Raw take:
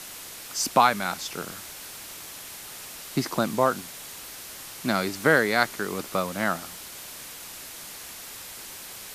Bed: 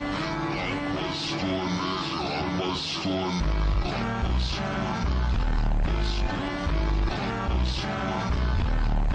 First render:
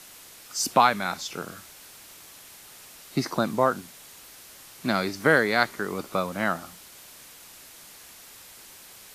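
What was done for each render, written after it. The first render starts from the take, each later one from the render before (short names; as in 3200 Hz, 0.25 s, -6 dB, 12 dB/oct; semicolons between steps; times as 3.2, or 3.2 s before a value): noise print and reduce 7 dB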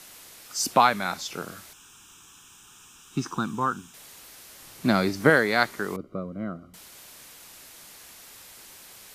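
1.73–3.94 fixed phaser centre 3000 Hz, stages 8; 4.62–5.3 low shelf 460 Hz +6.5 dB; 5.96–6.74 running mean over 51 samples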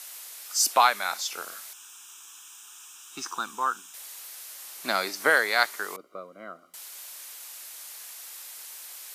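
HPF 660 Hz 12 dB/oct; high shelf 5700 Hz +8 dB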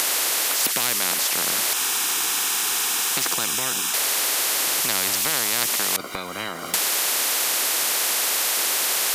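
upward compressor, threshold -29 dBFS; spectral compressor 10:1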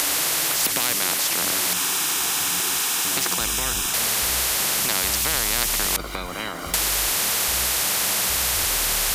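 add bed -11.5 dB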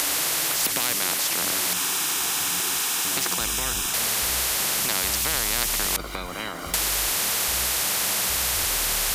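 gain -2 dB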